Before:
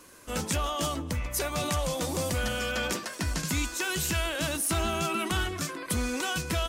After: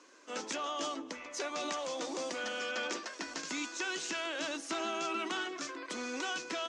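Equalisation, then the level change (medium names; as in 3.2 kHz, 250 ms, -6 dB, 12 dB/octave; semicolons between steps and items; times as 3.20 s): elliptic band-pass 280–6500 Hz, stop band 40 dB; -5.0 dB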